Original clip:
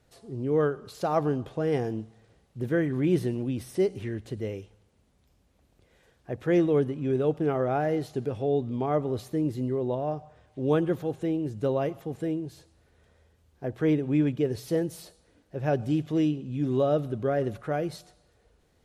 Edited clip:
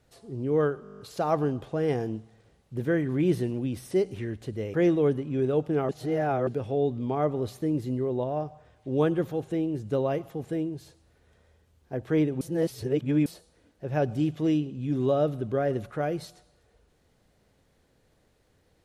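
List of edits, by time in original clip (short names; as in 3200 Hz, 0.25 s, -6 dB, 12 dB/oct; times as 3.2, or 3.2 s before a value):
0.83 stutter 0.02 s, 9 plays
4.58–6.45 cut
7.6–8.18 reverse
14.12–14.97 reverse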